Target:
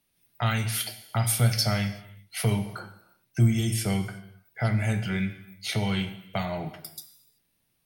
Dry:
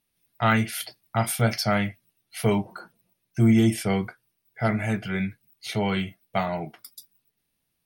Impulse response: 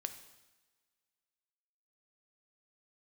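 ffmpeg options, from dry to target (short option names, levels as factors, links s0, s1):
-filter_complex "[0:a]acrossover=split=150|3000[s0][s1][s2];[s1]acompressor=threshold=0.02:ratio=4[s3];[s0][s3][s2]amix=inputs=3:normalize=0[s4];[1:a]atrim=start_sample=2205,afade=t=out:st=0.44:d=0.01,atrim=end_sample=19845[s5];[s4][s5]afir=irnorm=-1:irlink=0,volume=1.78"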